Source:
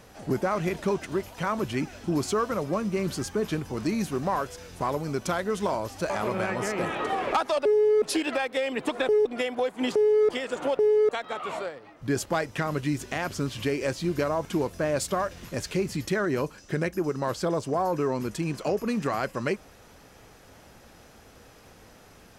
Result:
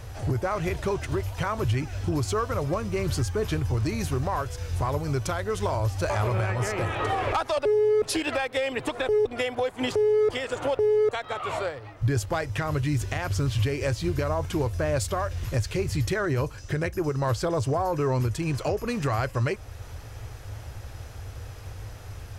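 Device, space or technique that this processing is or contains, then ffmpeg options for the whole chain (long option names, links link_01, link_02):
car stereo with a boomy subwoofer: -af "lowshelf=frequency=140:width_type=q:width=3:gain=11,alimiter=limit=-22dB:level=0:latency=1:release=375,volume=5dB"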